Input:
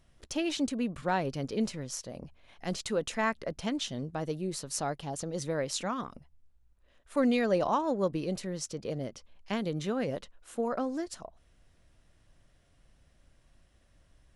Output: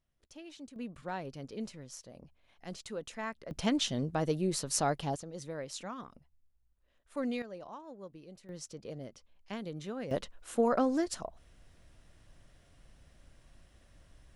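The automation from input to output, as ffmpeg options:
ffmpeg -i in.wav -af "asetnsamples=nb_out_samples=441:pad=0,asendcmd='0.76 volume volume -9.5dB;3.51 volume volume 3dB;5.16 volume volume -8.5dB;7.42 volume volume -18.5dB;8.49 volume volume -8dB;10.11 volume volume 4dB',volume=-18dB" out.wav

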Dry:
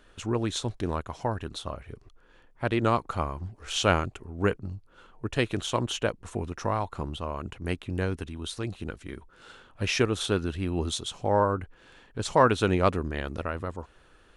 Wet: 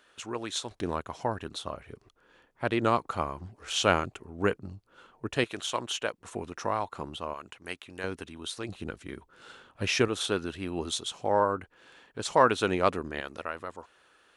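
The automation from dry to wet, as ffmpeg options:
ffmpeg -i in.wav -af "asetnsamples=nb_out_samples=441:pad=0,asendcmd='0.71 highpass f 190;5.44 highpass f 770;6.18 highpass f 340;7.34 highpass f 1200;8.04 highpass f 380;8.69 highpass f 130;10.08 highpass f 330;13.2 highpass f 730',highpass=frequency=770:poles=1" out.wav

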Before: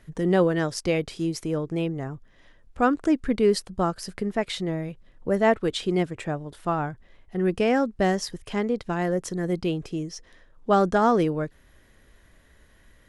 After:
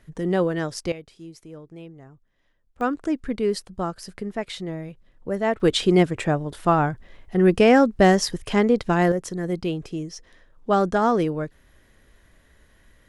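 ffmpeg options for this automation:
ffmpeg -i in.wav -af "asetnsamples=nb_out_samples=441:pad=0,asendcmd='0.92 volume volume -14dB;2.81 volume volume -3dB;5.6 volume volume 7dB;9.12 volume volume 0dB',volume=-1.5dB" out.wav

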